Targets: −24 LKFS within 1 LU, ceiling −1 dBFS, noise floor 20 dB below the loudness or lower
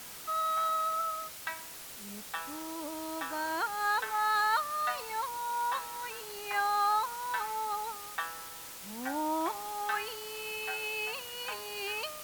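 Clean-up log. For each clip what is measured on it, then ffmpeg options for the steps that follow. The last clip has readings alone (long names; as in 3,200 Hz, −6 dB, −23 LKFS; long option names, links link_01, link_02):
background noise floor −46 dBFS; target noise floor −54 dBFS; integrated loudness −33.5 LKFS; sample peak −18.5 dBFS; target loudness −24.0 LKFS
→ -af "afftdn=noise_reduction=8:noise_floor=-46"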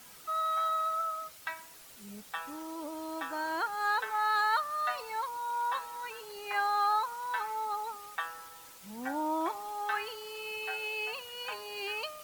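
background noise floor −53 dBFS; target noise floor −54 dBFS
→ -af "afftdn=noise_reduction=6:noise_floor=-53"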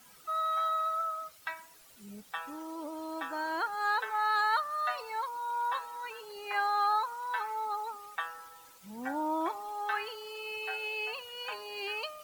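background noise floor −57 dBFS; integrated loudness −33.5 LKFS; sample peak −19.0 dBFS; target loudness −24.0 LKFS
→ -af "volume=9.5dB"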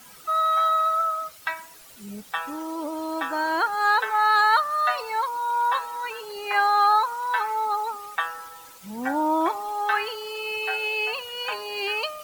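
integrated loudness −24.0 LKFS; sample peak −9.5 dBFS; background noise floor −48 dBFS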